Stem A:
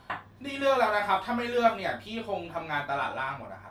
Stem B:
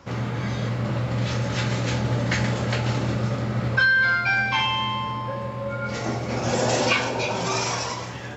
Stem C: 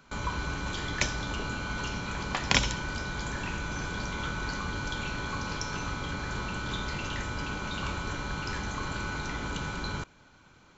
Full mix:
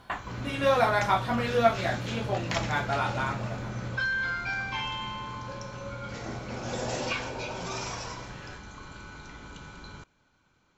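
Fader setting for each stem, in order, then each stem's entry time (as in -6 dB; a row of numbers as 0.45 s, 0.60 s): +1.0 dB, -10.5 dB, -10.5 dB; 0.00 s, 0.20 s, 0.00 s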